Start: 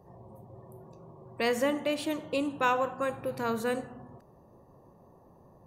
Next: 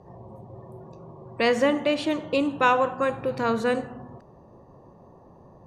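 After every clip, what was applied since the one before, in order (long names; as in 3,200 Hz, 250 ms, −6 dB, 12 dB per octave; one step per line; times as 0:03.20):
low-pass filter 5,600 Hz 12 dB per octave
level +6.5 dB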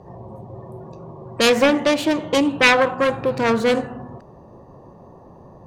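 phase distortion by the signal itself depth 0.32 ms
level +6.5 dB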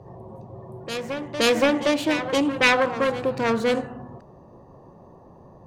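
backwards echo 521 ms −11 dB
level −4 dB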